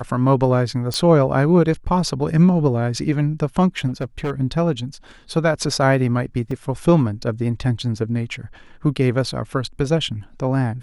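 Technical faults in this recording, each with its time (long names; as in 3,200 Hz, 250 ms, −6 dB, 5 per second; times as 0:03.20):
0:00.94: click −9 dBFS
0:03.87–0:04.31: clipping −19 dBFS
0:06.51: drop-out 3.3 ms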